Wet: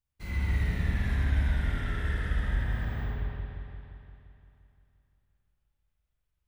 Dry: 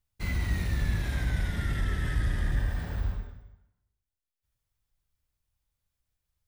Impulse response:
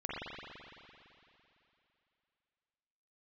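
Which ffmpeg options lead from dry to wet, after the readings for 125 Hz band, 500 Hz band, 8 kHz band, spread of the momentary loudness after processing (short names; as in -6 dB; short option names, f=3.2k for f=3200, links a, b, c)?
+0.5 dB, 0.0 dB, n/a, 13 LU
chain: -filter_complex "[1:a]atrim=start_sample=2205,asetrate=42777,aresample=44100[a];[0:a][a]afir=irnorm=-1:irlink=0,volume=-4.5dB"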